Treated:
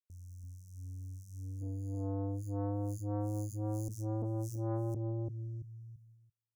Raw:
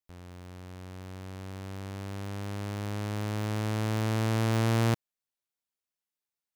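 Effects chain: 1.58–3.88 ripple EQ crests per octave 1.8, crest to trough 18 dB; dark delay 0.337 s, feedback 34%, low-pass 1700 Hz, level -3 dB; compressor 1.5:1, threshold -30 dBFS, peak gain reduction 4.5 dB; Chebyshev band-stop 140–5800 Hz, order 5; gate -58 dBFS, range -31 dB; core saturation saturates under 430 Hz

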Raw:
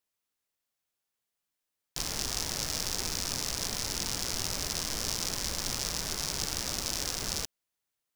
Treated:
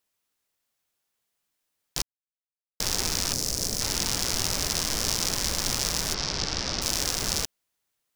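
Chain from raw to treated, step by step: 2.02–2.8 mute; 3.33–3.81 band shelf 1700 Hz -8.5 dB 2.6 oct; 6.14–6.82 Chebyshev low-pass 5400 Hz, order 3; gain +6 dB

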